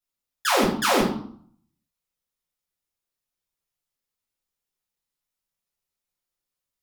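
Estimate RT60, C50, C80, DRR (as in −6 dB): 0.60 s, 6.0 dB, 10.0 dB, −7.5 dB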